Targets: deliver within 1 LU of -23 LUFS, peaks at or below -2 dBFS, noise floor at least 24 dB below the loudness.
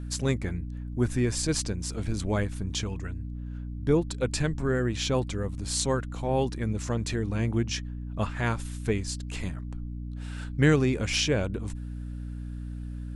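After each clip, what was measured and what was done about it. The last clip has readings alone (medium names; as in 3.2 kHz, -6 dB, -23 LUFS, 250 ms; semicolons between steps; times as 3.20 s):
hum 60 Hz; highest harmonic 300 Hz; hum level -33 dBFS; loudness -29.5 LUFS; peak level -8.5 dBFS; loudness target -23.0 LUFS
-> de-hum 60 Hz, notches 5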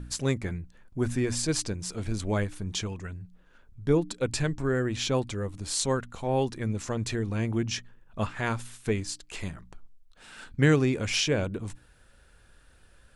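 hum not found; loudness -29.5 LUFS; peak level -9.0 dBFS; loudness target -23.0 LUFS
-> trim +6.5 dB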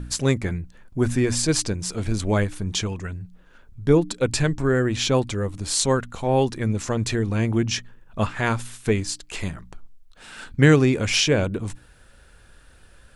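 loudness -23.0 LUFS; peak level -2.5 dBFS; noise floor -52 dBFS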